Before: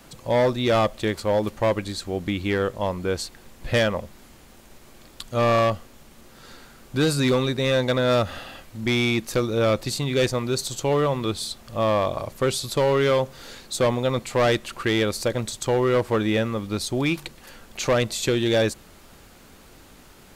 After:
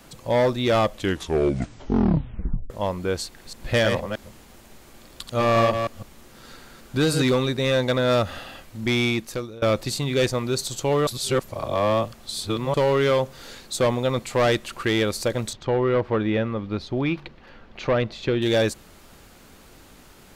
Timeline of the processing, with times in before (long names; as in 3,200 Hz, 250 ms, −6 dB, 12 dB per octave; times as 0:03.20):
0:00.89: tape stop 1.81 s
0:03.22–0:07.22: delay that plays each chunk backwards 156 ms, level −5.5 dB
0:09.06–0:09.62: fade out, to −23.5 dB
0:11.07–0:12.74: reverse
0:15.53–0:18.42: high-frequency loss of the air 270 metres